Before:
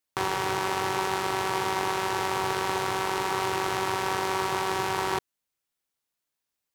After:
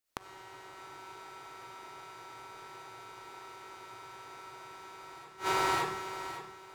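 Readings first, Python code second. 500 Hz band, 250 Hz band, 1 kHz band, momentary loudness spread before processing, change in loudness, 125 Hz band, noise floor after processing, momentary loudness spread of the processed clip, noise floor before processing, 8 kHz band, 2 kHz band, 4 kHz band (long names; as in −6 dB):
−13.0 dB, −13.0 dB, −10.5 dB, 1 LU, −12.0 dB, −14.5 dB, −53 dBFS, 18 LU, −85 dBFS, −12.0 dB, −11.0 dB, −11.5 dB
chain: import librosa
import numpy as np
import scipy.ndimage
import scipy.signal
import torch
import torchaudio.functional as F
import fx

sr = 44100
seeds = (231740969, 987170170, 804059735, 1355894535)

y = fx.echo_feedback(x, sr, ms=564, feedback_pct=27, wet_db=-5)
y = fx.rev_freeverb(y, sr, rt60_s=0.65, hf_ratio=0.7, predelay_ms=15, drr_db=-8.0)
y = fx.gate_flip(y, sr, shuts_db=-14.0, range_db=-26)
y = y * librosa.db_to_amplitude(-4.0)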